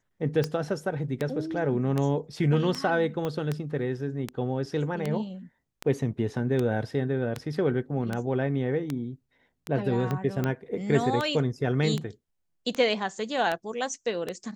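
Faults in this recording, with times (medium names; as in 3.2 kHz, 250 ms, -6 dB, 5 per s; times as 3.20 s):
tick 78 rpm -15 dBFS
3.25 s: pop -18 dBFS
10.11 s: pop -17 dBFS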